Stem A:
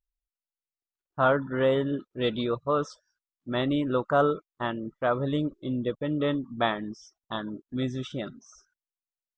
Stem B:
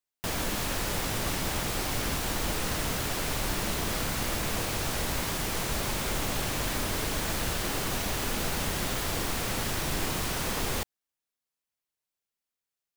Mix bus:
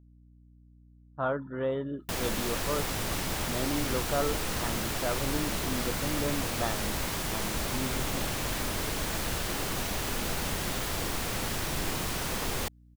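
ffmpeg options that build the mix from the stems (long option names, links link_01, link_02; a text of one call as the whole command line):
ffmpeg -i stem1.wav -i stem2.wav -filter_complex "[0:a]highshelf=frequency=2500:gain=-9.5,volume=-6.5dB[link_01];[1:a]adelay=1850,volume=-1.5dB[link_02];[link_01][link_02]amix=inputs=2:normalize=0,aeval=exprs='val(0)+0.00178*(sin(2*PI*60*n/s)+sin(2*PI*2*60*n/s)/2+sin(2*PI*3*60*n/s)/3+sin(2*PI*4*60*n/s)/4+sin(2*PI*5*60*n/s)/5)':channel_layout=same" out.wav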